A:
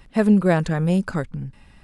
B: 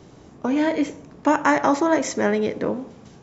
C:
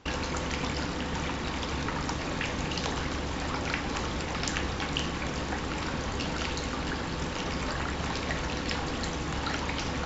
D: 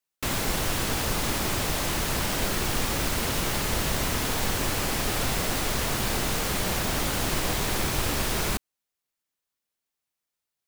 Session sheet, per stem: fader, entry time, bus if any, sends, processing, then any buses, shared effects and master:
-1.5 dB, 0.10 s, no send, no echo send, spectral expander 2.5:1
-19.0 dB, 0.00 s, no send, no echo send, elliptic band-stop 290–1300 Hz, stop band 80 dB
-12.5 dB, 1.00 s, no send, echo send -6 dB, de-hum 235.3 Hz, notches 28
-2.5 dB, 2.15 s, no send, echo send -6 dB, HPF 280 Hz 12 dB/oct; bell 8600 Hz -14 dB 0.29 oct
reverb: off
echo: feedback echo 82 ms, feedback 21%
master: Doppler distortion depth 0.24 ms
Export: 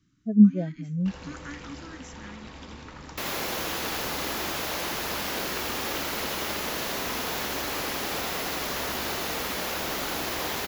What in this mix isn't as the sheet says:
stem D: entry 2.15 s -> 2.95 s; master: missing Doppler distortion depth 0.24 ms

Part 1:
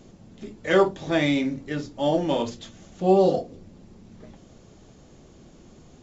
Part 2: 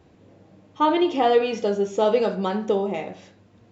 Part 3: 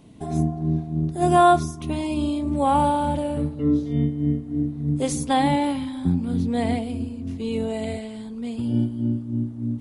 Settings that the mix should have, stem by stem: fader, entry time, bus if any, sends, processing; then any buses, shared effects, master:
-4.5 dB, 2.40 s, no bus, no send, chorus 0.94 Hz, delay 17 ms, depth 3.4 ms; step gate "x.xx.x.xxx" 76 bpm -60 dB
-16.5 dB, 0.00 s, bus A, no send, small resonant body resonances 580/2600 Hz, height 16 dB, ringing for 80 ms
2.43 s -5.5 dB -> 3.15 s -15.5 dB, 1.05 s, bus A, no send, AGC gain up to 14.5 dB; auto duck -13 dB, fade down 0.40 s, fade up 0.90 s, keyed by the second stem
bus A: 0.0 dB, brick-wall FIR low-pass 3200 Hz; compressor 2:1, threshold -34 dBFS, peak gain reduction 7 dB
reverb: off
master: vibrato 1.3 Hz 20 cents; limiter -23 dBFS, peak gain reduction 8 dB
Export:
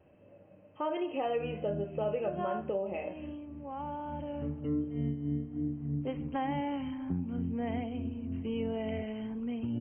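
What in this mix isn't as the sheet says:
stem 1: muted; stem 2 -16.5 dB -> -9.0 dB

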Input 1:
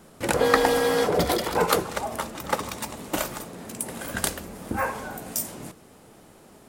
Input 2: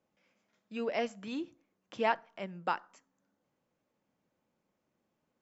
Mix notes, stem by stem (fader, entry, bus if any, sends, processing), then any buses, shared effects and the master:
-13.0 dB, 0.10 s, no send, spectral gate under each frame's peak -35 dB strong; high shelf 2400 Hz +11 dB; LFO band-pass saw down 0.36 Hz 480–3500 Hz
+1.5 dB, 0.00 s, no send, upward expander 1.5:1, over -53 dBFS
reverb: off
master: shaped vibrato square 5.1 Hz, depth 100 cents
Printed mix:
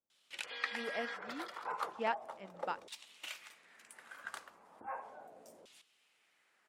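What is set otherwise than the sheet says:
stem 2 +1.5 dB -> -5.0 dB; master: missing shaped vibrato square 5.1 Hz, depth 100 cents

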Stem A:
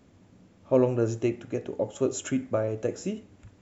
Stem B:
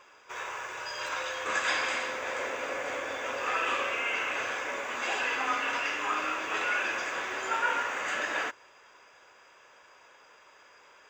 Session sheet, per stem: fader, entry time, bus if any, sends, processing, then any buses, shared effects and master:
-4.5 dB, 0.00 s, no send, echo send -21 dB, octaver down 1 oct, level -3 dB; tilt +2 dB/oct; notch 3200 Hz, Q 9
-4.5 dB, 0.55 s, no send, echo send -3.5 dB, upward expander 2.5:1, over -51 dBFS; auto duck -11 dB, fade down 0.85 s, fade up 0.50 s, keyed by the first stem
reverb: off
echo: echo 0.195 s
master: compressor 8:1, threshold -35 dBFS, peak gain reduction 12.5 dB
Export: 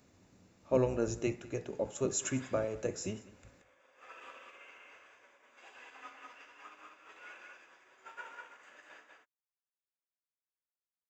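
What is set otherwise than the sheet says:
stem B -4.5 dB -> -16.5 dB; master: missing compressor 8:1, threshold -35 dBFS, peak gain reduction 12.5 dB

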